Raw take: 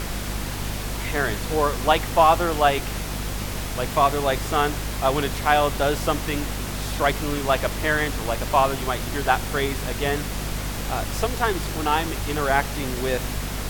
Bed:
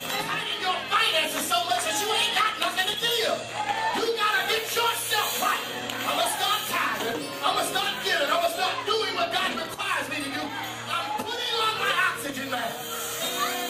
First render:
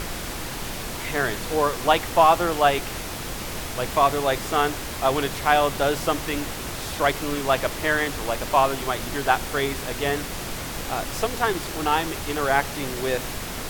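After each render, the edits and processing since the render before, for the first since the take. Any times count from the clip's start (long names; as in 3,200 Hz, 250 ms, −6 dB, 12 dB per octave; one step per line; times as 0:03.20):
mains-hum notches 50/100/150/200/250 Hz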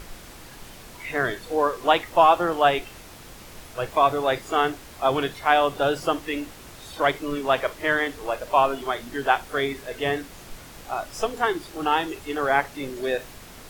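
noise reduction from a noise print 12 dB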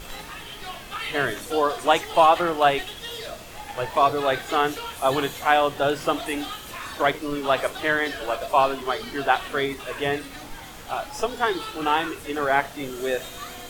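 mix in bed −10.5 dB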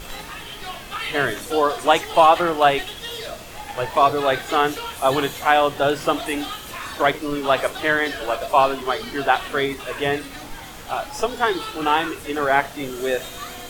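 level +3 dB
brickwall limiter −2 dBFS, peak gain reduction 1 dB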